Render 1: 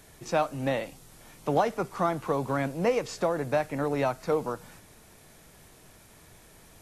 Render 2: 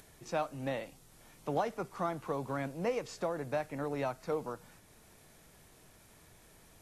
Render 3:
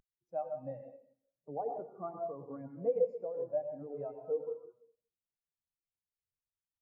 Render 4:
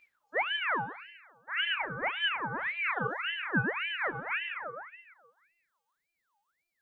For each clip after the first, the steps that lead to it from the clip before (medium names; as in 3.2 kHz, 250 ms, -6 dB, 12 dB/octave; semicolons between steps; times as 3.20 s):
upward compressor, threshold -46 dBFS; trim -8 dB
reverberation RT60 1.4 s, pre-delay 83 ms, DRR 0.5 dB; spectral contrast expander 2.5:1
robot voice 339 Hz; simulated room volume 330 m³, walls mixed, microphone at 2.6 m; ring modulator with a swept carrier 1.6 kHz, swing 50%, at 1.8 Hz; trim +6 dB